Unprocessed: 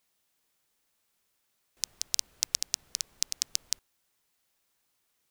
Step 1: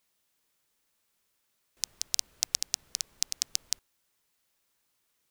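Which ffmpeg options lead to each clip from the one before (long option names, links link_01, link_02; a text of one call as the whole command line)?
ffmpeg -i in.wav -af "bandreject=frequency=750:width=14" out.wav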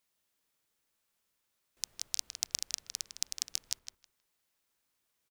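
ffmpeg -i in.wav -filter_complex "[0:a]asplit=2[link_01][link_02];[link_02]adelay=158,lowpass=frequency=3100:poles=1,volume=-5dB,asplit=2[link_03][link_04];[link_04]adelay=158,lowpass=frequency=3100:poles=1,volume=0.22,asplit=2[link_05][link_06];[link_06]adelay=158,lowpass=frequency=3100:poles=1,volume=0.22[link_07];[link_01][link_03][link_05][link_07]amix=inputs=4:normalize=0,volume=-5dB" out.wav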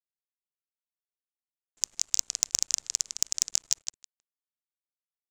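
ffmpeg -i in.wav -af "acrusher=bits=8:dc=4:mix=0:aa=0.000001,lowpass=frequency=7200:width_type=q:width=4.4,asoftclip=type=tanh:threshold=-8dB,volume=5dB" out.wav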